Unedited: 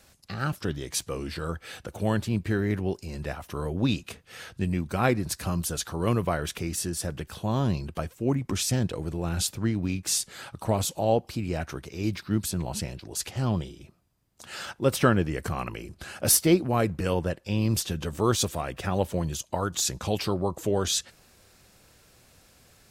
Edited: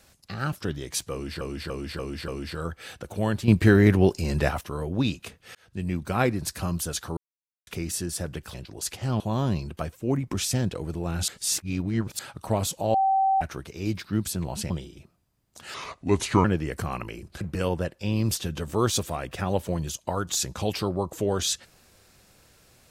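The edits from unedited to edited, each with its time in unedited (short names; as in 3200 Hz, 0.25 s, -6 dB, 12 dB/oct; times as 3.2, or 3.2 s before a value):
1.12–1.41 loop, 5 plays
2.32–3.45 gain +9.5 dB
4.39–4.78 fade in
6.01–6.51 mute
9.46–10.37 reverse
11.12–11.59 bleep 773 Hz -18.5 dBFS
12.88–13.54 move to 7.38
14.58–15.11 speed 75%
16.07–16.86 cut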